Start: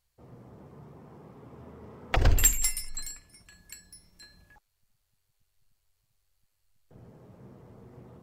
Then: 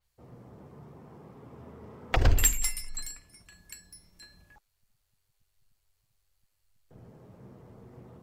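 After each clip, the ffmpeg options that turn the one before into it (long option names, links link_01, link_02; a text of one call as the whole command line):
ffmpeg -i in.wav -af "adynamicequalizer=threshold=0.00794:dfrequency=4900:dqfactor=0.7:tfrequency=4900:tqfactor=0.7:attack=5:release=100:ratio=0.375:range=2.5:mode=cutabove:tftype=highshelf" out.wav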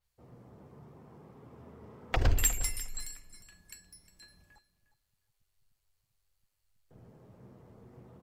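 ffmpeg -i in.wav -af "aecho=1:1:357|714:0.168|0.0252,volume=-4dB" out.wav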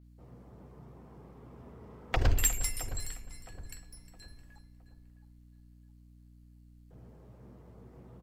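ffmpeg -i in.wav -filter_complex "[0:a]asplit=2[link_01][link_02];[link_02]adelay=665,lowpass=frequency=1800:poles=1,volume=-13dB,asplit=2[link_03][link_04];[link_04]adelay=665,lowpass=frequency=1800:poles=1,volume=0.4,asplit=2[link_05][link_06];[link_06]adelay=665,lowpass=frequency=1800:poles=1,volume=0.4,asplit=2[link_07][link_08];[link_08]adelay=665,lowpass=frequency=1800:poles=1,volume=0.4[link_09];[link_01][link_03][link_05][link_07][link_09]amix=inputs=5:normalize=0,aeval=exprs='val(0)+0.00178*(sin(2*PI*60*n/s)+sin(2*PI*2*60*n/s)/2+sin(2*PI*3*60*n/s)/3+sin(2*PI*4*60*n/s)/4+sin(2*PI*5*60*n/s)/5)':channel_layout=same" out.wav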